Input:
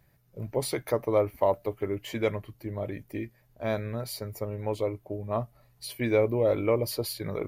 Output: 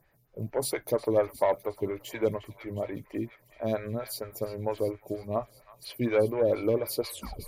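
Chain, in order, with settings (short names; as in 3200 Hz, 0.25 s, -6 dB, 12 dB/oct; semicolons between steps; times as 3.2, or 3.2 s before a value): tape stop at the end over 0.41 s; on a send: thin delay 0.359 s, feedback 65%, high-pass 1700 Hz, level -12.5 dB; on the sum: added harmonics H 5 -21 dB, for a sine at -12 dBFS; photocell phaser 4.3 Hz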